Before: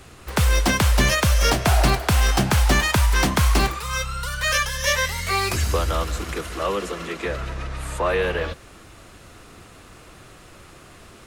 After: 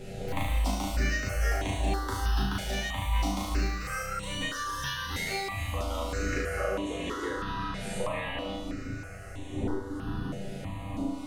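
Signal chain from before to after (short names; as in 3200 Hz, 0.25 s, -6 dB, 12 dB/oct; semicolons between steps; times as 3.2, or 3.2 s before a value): wind noise 320 Hz -35 dBFS; dynamic EQ 100 Hz, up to -6 dB, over -31 dBFS, Q 0.81; in parallel at -1 dB: limiter -17 dBFS, peak gain reduction 9 dB; on the sum: high shelf 5300 Hz -9 dB; resonator 98 Hz, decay 0.35 s, harmonics all, mix 90%; reverb RT60 0.40 s, pre-delay 4 ms, DRR 4 dB; compressor, threshold -32 dBFS, peak gain reduction 13.5 dB; flutter echo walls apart 6.3 m, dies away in 0.8 s; step phaser 3.1 Hz 290–5000 Hz; gain +4 dB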